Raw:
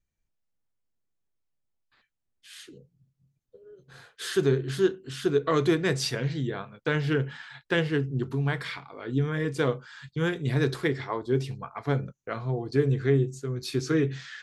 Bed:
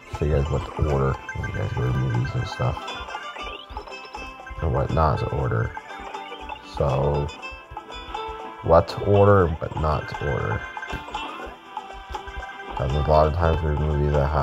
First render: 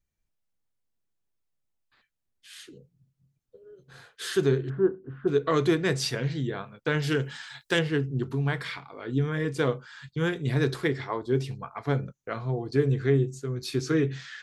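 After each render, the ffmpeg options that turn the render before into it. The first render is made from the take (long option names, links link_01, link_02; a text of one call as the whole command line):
ffmpeg -i in.wav -filter_complex "[0:a]asplit=3[link_01][link_02][link_03];[link_01]afade=type=out:start_time=4.68:duration=0.02[link_04];[link_02]lowpass=frequency=1300:width=0.5412,lowpass=frequency=1300:width=1.3066,afade=type=in:start_time=4.68:duration=0.02,afade=type=out:start_time=5.27:duration=0.02[link_05];[link_03]afade=type=in:start_time=5.27:duration=0.02[link_06];[link_04][link_05][link_06]amix=inputs=3:normalize=0,asettb=1/sr,asplit=3[link_07][link_08][link_09];[link_07]atrim=end=7.024[link_10];[link_08]atrim=start=7.02:end=7.79,asetpts=PTS-STARTPTS,afade=type=in:duration=0.004:curve=qsin,afade=type=out:start_time=0.766:duration=0.004:curve=qsin,bass=frequency=250:gain=-2,treble=frequency=4000:gain=14[link_11];[link_09]atrim=start=7.786[link_12];[link_10][link_11]acrossfade=duration=0.004:curve1=hsin:curve2=qsin[link_13];[link_13][link_12]acrossfade=duration=0.004:curve1=qsin:curve2=hsin" out.wav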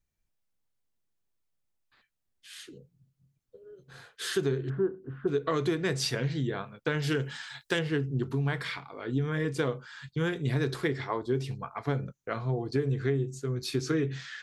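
ffmpeg -i in.wav -af "acompressor=threshold=-24dB:ratio=6" out.wav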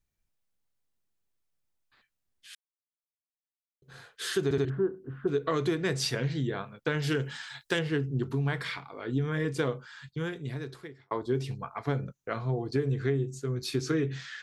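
ffmpeg -i in.wav -filter_complex "[0:a]asplit=7[link_01][link_02][link_03][link_04][link_05][link_06][link_07];[link_01]atrim=end=2.55,asetpts=PTS-STARTPTS,afade=type=out:start_time=2.546:duration=0.004:curve=hsin[link_08];[link_02]atrim=start=2.55:end=3.82,asetpts=PTS-STARTPTS,volume=0[link_09];[link_03]atrim=start=3.82:end=4.512,asetpts=PTS-STARTPTS,afade=type=in:duration=0.004:curve=hsin[link_10];[link_04]atrim=start=4.438:end=4.512[link_11];[link_05]atrim=start=4.438:end=4.512[link_12];[link_06]atrim=start=4.648:end=11.11,asetpts=PTS-STARTPTS,afade=type=out:start_time=5.062:duration=1.4[link_13];[link_07]atrim=start=11.11,asetpts=PTS-STARTPTS,afade=type=in:duration=0.004:curve=hsin[link_14];[link_08][link_09][link_10]concat=n=3:v=0:a=1[link_15];[link_15][link_11]acrossfade=duration=0.004:curve1=hsin:curve2=hsin[link_16];[link_16][link_12]acrossfade=duration=0.004:curve1=hsin:curve2=hsin[link_17];[link_13][link_14]concat=n=2:v=0:a=1[link_18];[link_17][link_18]acrossfade=duration=0.004:curve1=hsin:curve2=hsin" out.wav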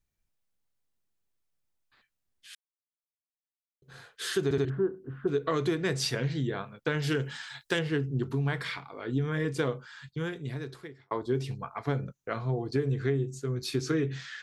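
ffmpeg -i in.wav -af anull out.wav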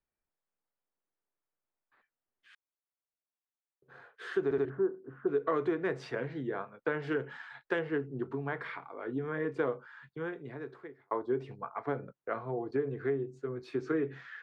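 ffmpeg -i in.wav -filter_complex "[0:a]lowpass=7700,acrossover=split=270 2000:gain=0.178 1 0.0631[link_01][link_02][link_03];[link_01][link_02][link_03]amix=inputs=3:normalize=0" out.wav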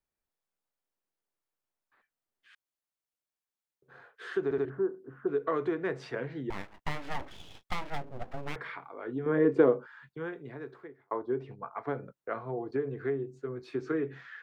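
ffmpeg -i in.wav -filter_complex "[0:a]asettb=1/sr,asplit=3[link_01][link_02][link_03];[link_01]atrim=end=6.504[link_04];[link_02]atrim=start=6.5:end=8.56,asetpts=PTS-STARTPTS,afade=type=in:duration=0.004:curve=qsin,afade=type=out:start_time=2.056:duration=0.004:curve=qsin,aeval=exprs='abs(val(0))':channel_layout=same[link_05];[link_03]atrim=start=8.556[link_06];[link_04][link_05]acrossfade=duration=0.004:curve1=hsin:curve2=qsin[link_07];[link_07][link_06]acrossfade=duration=0.004:curve1=qsin:curve2=hsin,asettb=1/sr,asplit=3[link_08][link_09][link_10];[link_08]atrim=end=9.264[link_11];[link_09]atrim=start=9.26:end=9.87,asetpts=PTS-STARTPTS,afade=type=in:duration=0.004:curve=qsin,afade=type=out:start_time=0.606:duration=0.004:curve=qsin,equalizer=frequency=320:width=0.52:gain=11.5[link_12];[link_10]atrim=start=9.866[link_13];[link_11][link_12]acrossfade=duration=0.004:curve1=hsin:curve2=qsin[link_14];[link_14][link_13]acrossfade=duration=0.004:curve1=qsin:curve2=hsin,asettb=1/sr,asplit=3[link_15][link_16][link_17];[link_15]atrim=end=10.854[link_18];[link_16]atrim=start=10.85:end=11.73,asetpts=PTS-STARTPTS,afade=type=in:duration=0.004:curve=qsin,afade=type=out:start_time=0.876:duration=0.004:curve=qsin,lowpass=frequency=2600:poles=1[link_19];[link_17]atrim=start=11.726[link_20];[link_18][link_19]acrossfade=duration=0.004:curve1=hsin:curve2=qsin[link_21];[link_21][link_20]acrossfade=duration=0.004:curve1=qsin:curve2=hsin" out.wav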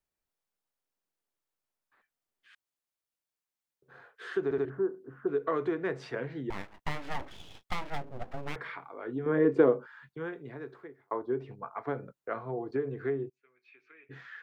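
ffmpeg -i in.wav -filter_complex "[0:a]asplit=3[link_01][link_02][link_03];[link_01]afade=type=out:start_time=13.28:duration=0.02[link_04];[link_02]bandpass=frequency=2400:width_type=q:width=7.6,afade=type=in:start_time=13.28:duration=0.02,afade=type=out:start_time=14.09:duration=0.02[link_05];[link_03]afade=type=in:start_time=14.09:duration=0.02[link_06];[link_04][link_05][link_06]amix=inputs=3:normalize=0" out.wav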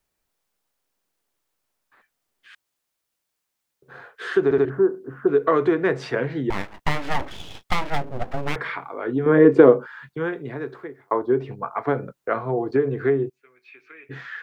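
ffmpeg -i in.wav -af "volume=11.5dB,alimiter=limit=-1dB:level=0:latency=1" out.wav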